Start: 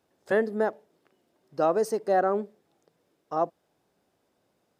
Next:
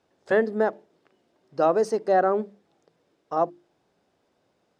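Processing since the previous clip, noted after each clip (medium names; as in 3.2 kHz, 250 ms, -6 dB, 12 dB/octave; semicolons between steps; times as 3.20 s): low-pass 6.6 kHz 12 dB/octave; hum notches 50/100/150/200/250/300/350 Hz; trim +3 dB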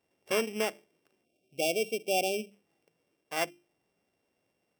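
sorted samples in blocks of 16 samples; spectral selection erased 1.25–2.51 s, 780–2200 Hz; trim -8 dB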